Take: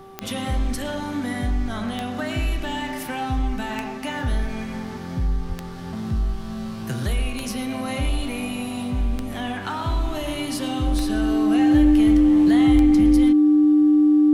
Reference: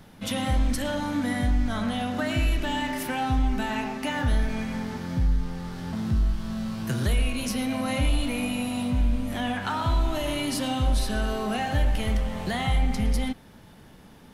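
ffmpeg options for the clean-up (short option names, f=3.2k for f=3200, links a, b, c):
-filter_complex "[0:a]adeclick=t=4,bandreject=f=387.6:t=h:w=4,bandreject=f=775.2:t=h:w=4,bandreject=f=1.1628k:t=h:w=4,bandreject=f=300:w=30,asplit=3[a][b][c];[a]afade=t=out:st=5.48:d=0.02[d];[b]highpass=f=140:w=0.5412,highpass=f=140:w=1.3066,afade=t=in:st=5.48:d=0.02,afade=t=out:st=5.6:d=0.02[e];[c]afade=t=in:st=5.6:d=0.02[f];[d][e][f]amix=inputs=3:normalize=0,asplit=3[g][h][i];[g]afade=t=out:st=12.74:d=0.02[j];[h]highpass=f=140:w=0.5412,highpass=f=140:w=1.3066,afade=t=in:st=12.74:d=0.02,afade=t=out:st=12.86:d=0.02[k];[i]afade=t=in:st=12.86:d=0.02[l];[j][k][l]amix=inputs=3:normalize=0"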